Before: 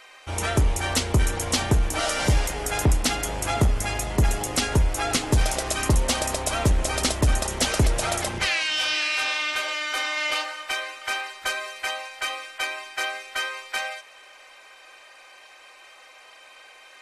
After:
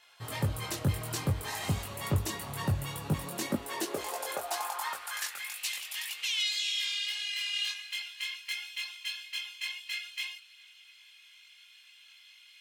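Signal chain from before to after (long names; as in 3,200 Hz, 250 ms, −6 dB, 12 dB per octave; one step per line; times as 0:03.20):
multi-voice chorus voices 4, 1.3 Hz, delay 28 ms, depth 3 ms
high-pass filter sweep 85 Hz → 1,900 Hz, 0:03.96–0:07.58
wrong playback speed 33 rpm record played at 45 rpm
level −8.5 dB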